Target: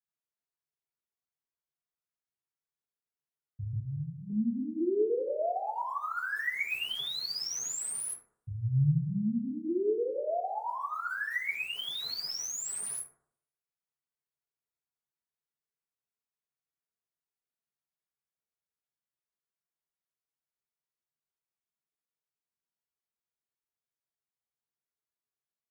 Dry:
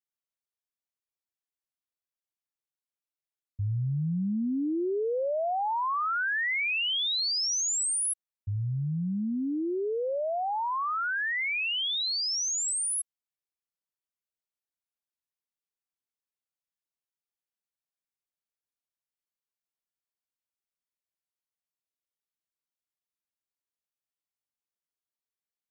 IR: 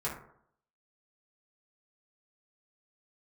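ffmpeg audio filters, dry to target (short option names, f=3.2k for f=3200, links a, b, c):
-filter_complex "[0:a]asettb=1/sr,asplit=3[a][b][c];[a]atrim=end=3.734[d];[b]atrim=start=3.73:end=4.3,asetpts=PTS-STARTPTS,afade=t=in:d=0.004:c=qsin,afade=t=out:st=0.566:d=0.004:c=qsin,lowshelf=f=540:t=q:w=1.5:g=-11.5[e];[c]atrim=start=4.296[f];[d][e]acrossfade=d=0.004:c1=hsin:c2=qsin[g];[g][f]acrossfade=d=0.004:c1=qsin:c2=hsin,acrossover=split=710|1800[h][i][j];[h]aecho=1:1:205|410|615:0.282|0.0705|0.0176[k];[i]alimiter=level_in=13dB:limit=-24dB:level=0:latency=1,volume=-13dB[l];[j]acrusher=bits=3:mode=log:mix=0:aa=0.000001[m];[k][l][m]amix=inputs=3:normalize=0[n];[1:a]atrim=start_sample=2205[o];[n][o]afir=irnorm=-1:irlink=0,volume=-7.5dB"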